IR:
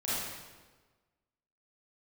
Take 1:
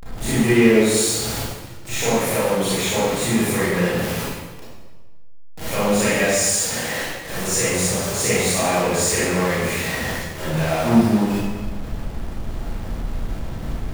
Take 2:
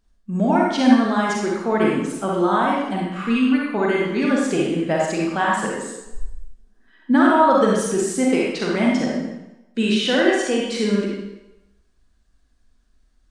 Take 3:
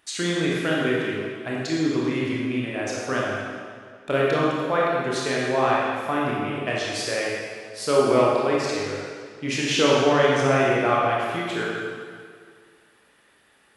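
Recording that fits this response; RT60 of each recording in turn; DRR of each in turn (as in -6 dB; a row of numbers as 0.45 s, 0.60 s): 1; 1.3 s, 0.95 s, 2.1 s; -10.5 dB, -3.5 dB, -5.0 dB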